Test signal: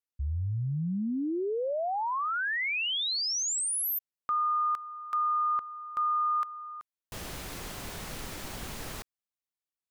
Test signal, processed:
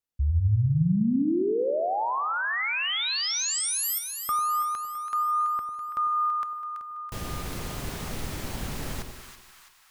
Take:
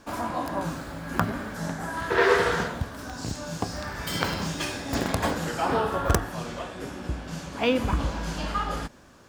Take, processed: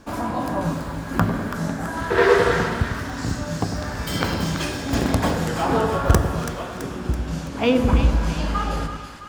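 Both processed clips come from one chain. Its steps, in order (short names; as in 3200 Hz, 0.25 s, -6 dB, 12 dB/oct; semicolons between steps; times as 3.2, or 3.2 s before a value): low shelf 370 Hz +6.5 dB; split-band echo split 1000 Hz, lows 99 ms, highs 0.331 s, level -7.5 dB; plate-style reverb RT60 1.3 s, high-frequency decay 0.95×, DRR 15.5 dB; gain +1.5 dB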